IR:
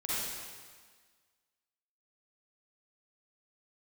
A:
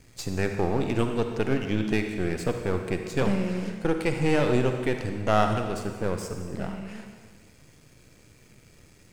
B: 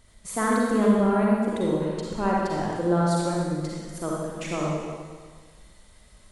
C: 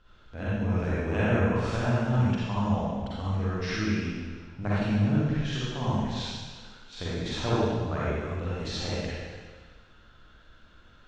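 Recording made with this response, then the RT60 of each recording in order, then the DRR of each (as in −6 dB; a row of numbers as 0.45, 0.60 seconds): C; 1.6, 1.6, 1.6 seconds; 5.0, −4.5, −9.5 decibels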